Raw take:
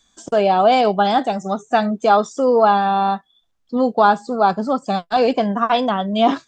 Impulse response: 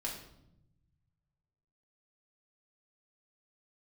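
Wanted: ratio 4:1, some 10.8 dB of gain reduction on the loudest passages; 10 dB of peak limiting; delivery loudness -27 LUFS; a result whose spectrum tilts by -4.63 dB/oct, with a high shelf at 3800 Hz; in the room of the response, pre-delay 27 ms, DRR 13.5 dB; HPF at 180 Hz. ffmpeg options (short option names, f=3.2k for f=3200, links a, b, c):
-filter_complex "[0:a]highpass=180,highshelf=f=3.8k:g=5.5,acompressor=threshold=-22dB:ratio=4,alimiter=limit=-21.5dB:level=0:latency=1,asplit=2[a][b];[1:a]atrim=start_sample=2205,adelay=27[c];[b][c]afir=irnorm=-1:irlink=0,volume=-14.5dB[d];[a][d]amix=inputs=2:normalize=0,volume=3dB"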